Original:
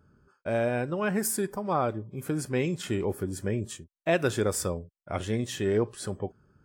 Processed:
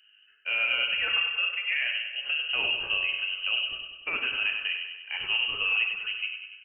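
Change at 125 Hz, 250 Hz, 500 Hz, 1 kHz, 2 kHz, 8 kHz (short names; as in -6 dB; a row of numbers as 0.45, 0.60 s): under -25 dB, -25.5 dB, -19.0 dB, -7.5 dB, +11.5 dB, under -40 dB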